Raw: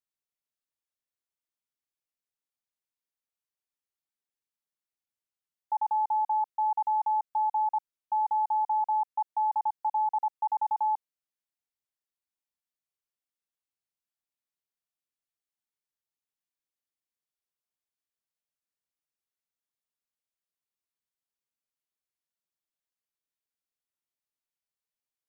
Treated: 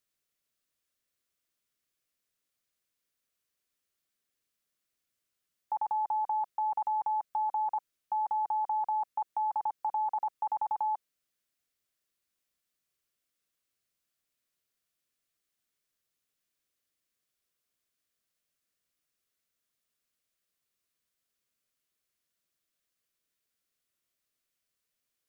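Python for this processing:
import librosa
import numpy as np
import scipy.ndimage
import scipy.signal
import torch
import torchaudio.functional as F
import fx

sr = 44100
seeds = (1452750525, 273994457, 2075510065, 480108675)

y = fx.peak_eq(x, sr, hz=870.0, db=-13.0, octaves=0.27)
y = y * 10.0 ** (9.0 / 20.0)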